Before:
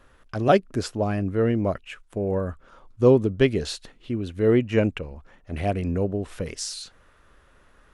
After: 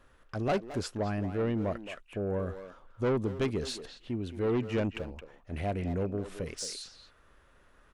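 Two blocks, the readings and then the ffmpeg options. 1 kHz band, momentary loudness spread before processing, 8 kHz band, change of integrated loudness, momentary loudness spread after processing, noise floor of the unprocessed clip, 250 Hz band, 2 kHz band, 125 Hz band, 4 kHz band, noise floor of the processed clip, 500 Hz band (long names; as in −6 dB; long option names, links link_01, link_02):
−8.5 dB, 16 LU, −6.0 dB, −9.5 dB, 12 LU, −58 dBFS, −8.5 dB, −8.0 dB, −8.0 dB, −6.5 dB, −62 dBFS, −10.0 dB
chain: -filter_complex "[0:a]asoftclip=type=tanh:threshold=-18.5dB,asplit=2[link_01][link_02];[link_02]adelay=220,highpass=300,lowpass=3400,asoftclip=type=hard:threshold=-27dB,volume=-7dB[link_03];[link_01][link_03]amix=inputs=2:normalize=0,volume=-5.5dB"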